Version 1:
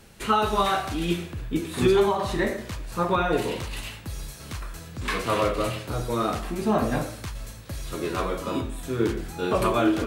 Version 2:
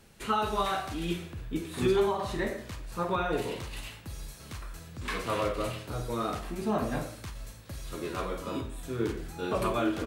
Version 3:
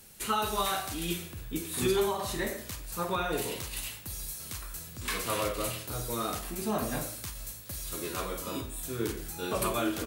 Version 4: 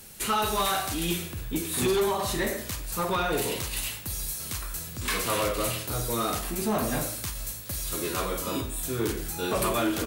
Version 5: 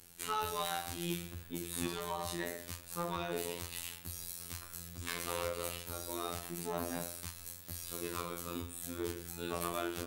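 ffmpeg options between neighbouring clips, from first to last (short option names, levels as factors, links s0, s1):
-filter_complex "[0:a]asplit=2[s0][s1];[s1]adelay=48,volume=0.237[s2];[s0][s2]amix=inputs=2:normalize=0,volume=0.473"
-af "aemphasis=mode=production:type=75fm,volume=0.841"
-af "asoftclip=type=tanh:threshold=0.0473,volume=2.11"
-af "afftfilt=real='hypot(re,im)*cos(PI*b)':imag='0':win_size=2048:overlap=0.75,volume=0.422"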